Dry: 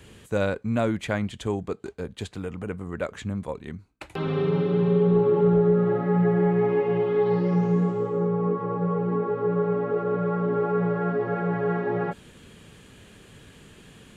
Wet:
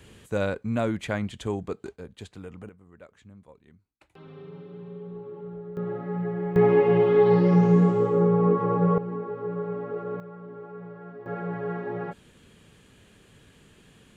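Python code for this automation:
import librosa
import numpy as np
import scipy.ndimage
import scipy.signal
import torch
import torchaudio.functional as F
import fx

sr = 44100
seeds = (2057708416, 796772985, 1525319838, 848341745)

y = fx.gain(x, sr, db=fx.steps((0.0, -2.0), (1.96, -8.0), (2.69, -19.5), (5.77, -8.5), (6.56, 4.0), (8.98, -7.0), (10.2, -17.0), (11.26, -6.0)))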